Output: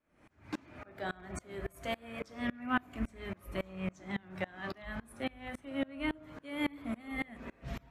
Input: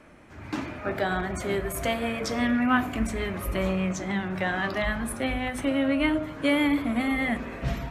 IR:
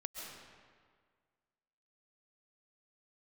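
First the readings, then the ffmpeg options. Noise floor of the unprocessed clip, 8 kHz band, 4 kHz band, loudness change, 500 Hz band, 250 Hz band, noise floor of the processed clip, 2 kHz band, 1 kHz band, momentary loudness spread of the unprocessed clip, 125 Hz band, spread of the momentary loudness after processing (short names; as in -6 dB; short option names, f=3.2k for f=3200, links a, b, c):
-43 dBFS, -17.5 dB, -12.0 dB, -12.5 dB, -13.0 dB, -13.0 dB, -65 dBFS, -12.0 dB, -11.5 dB, 8 LU, -12.5 dB, 9 LU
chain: -af "aeval=exprs='val(0)*pow(10,-28*if(lt(mod(-3.6*n/s,1),2*abs(-3.6)/1000),1-mod(-3.6*n/s,1)/(2*abs(-3.6)/1000),(mod(-3.6*n/s,1)-2*abs(-3.6)/1000)/(1-2*abs(-3.6)/1000))/20)':c=same,volume=-5dB"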